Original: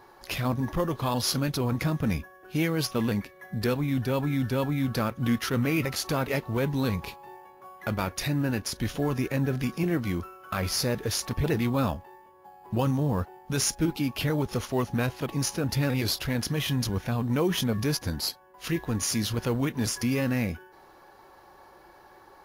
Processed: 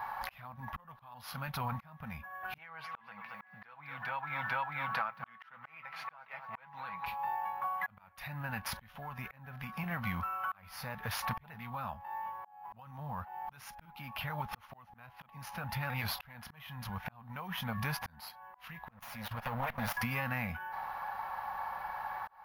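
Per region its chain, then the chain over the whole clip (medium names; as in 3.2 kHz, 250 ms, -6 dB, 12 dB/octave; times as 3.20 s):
2.58–7.06 s: band-pass filter 1.4 kHz, Q 0.69 + comb 6.1 ms, depth 40% + bit-crushed delay 224 ms, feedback 35%, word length 9-bit, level -14 dB
18.90–19.97 s: comb filter that takes the minimum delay 8.4 ms + peaking EQ 560 Hz +5.5 dB 0.51 oct + level held to a coarse grid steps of 16 dB
whole clip: FFT filter 220 Hz 0 dB, 330 Hz -22 dB, 820 Hz +13 dB, 2.5 kHz +7 dB, 7.8 kHz -14 dB, 13 kHz +5 dB; compression 16:1, threshold -35 dBFS; slow attack 744 ms; trim +3.5 dB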